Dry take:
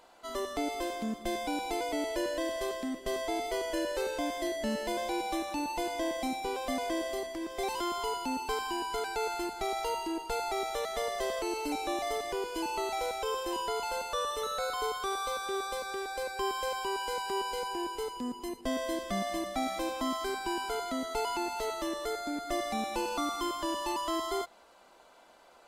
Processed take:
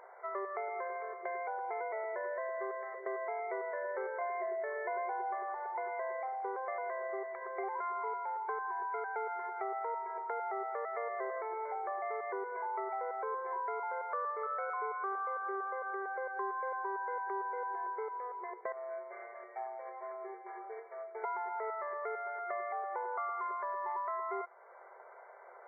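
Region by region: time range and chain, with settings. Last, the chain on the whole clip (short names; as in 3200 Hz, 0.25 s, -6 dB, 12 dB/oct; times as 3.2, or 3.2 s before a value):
4.21–5.75 low shelf 400 Hz +6 dB + comb 2.8 ms, depth 56%
18.72–21.24 median filter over 41 samples + metallic resonator 67 Hz, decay 0.34 s, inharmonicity 0.008
whole clip: dynamic EQ 1200 Hz, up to +6 dB, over -49 dBFS, Q 1.3; FFT band-pass 360–2300 Hz; compressor 2.5:1, threshold -46 dBFS; gain +5 dB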